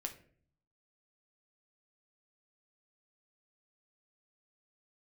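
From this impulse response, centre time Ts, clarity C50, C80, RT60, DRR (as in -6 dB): 10 ms, 12.5 dB, 16.5 dB, 0.50 s, 4.0 dB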